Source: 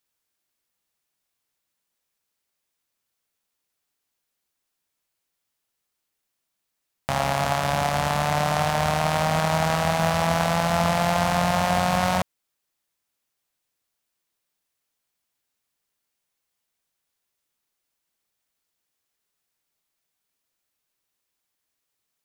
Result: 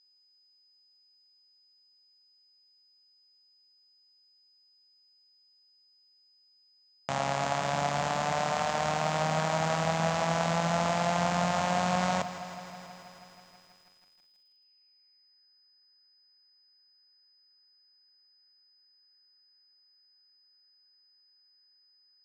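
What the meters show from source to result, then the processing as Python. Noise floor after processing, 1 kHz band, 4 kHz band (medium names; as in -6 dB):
-66 dBFS, -6.0 dB, -6.5 dB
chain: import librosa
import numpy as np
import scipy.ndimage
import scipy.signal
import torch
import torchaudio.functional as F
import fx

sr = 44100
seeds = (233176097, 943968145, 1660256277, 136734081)

p1 = scipy.signal.sosfilt(scipy.signal.butter(2, 160.0, 'highpass', fs=sr, output='sos'), x)
p2 = fx.low_shelf(p1, sr, hz=350.0, db=3.5)
p3 = fx.hum_notches(p2, sr, base_hz=50, count=6)
p4 = fx.filter_sweep_lowpass(p3, sr, from_hz=7200.0, to_hz=1700.0, start_s=13.21, end_s=15.46, q=4.3)
p5 = p4 + 10.0 ** (-52.0 / 20.0) * np.sin(2.0 * np.pi * 5000.0 * np.arange(len(p4)) / sr)
p6 = fx.air_absorb(p5, sr, metres=110.0)
p7 = p6 + fx.echo_feedback(p6, sr, ms=325, feedback_pct=49, wet_db=-24.0, dry=0)
p8 = fx.echo_crushed(p7, sr, ms=161, feedback_pct=80, bits=8, wet_db=-14.0)
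y = p8 * librosa.db_to_amplitude(-6.5)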